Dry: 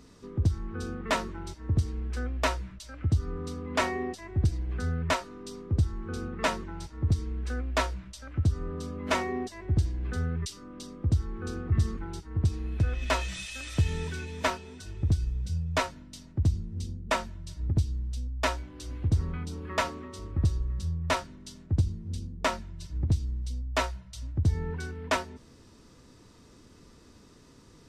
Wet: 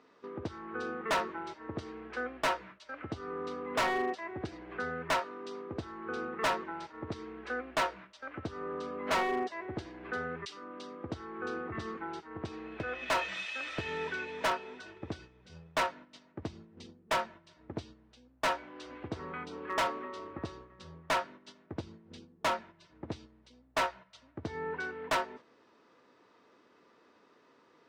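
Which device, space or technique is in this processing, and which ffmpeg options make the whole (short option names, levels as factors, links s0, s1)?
walkie-talkie: -af "highpass=490,lowpass=2300,asoftclip=type=hard:threshold=0.0237,agate=range=0.447:threshold=0.00158:ratio=16:detection=peak,volume=2.11"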